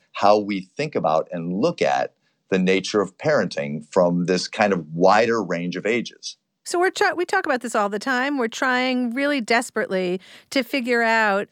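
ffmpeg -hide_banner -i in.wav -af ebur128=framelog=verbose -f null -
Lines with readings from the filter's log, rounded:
Integrated loudness:
  I:         -21.3 LUFS
  Threshold: -31.5 LUFS
Loudness range:
  LRA:         1.9 LU
  Threshold: -41.6 LUFS
  LRA low:   -22.4 LUFS
  LRA high:  -20.5 LUFS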